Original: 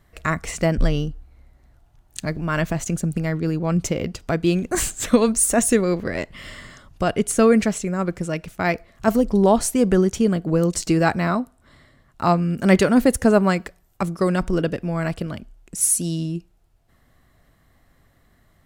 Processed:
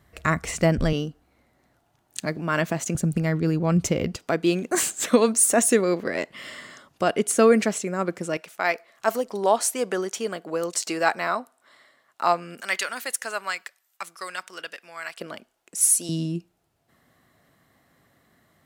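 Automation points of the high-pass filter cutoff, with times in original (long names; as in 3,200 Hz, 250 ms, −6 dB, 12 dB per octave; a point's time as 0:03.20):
56 Hz
from 0:00.93 200 Hz
from 0:02.95 66 Hz
from 0:04.16 260 Hz
from 0:08.37 590 Hz
from 0:12.61 1,500 Hz
from 0:15.20 470 Hz
from 0:16.09 150 Hz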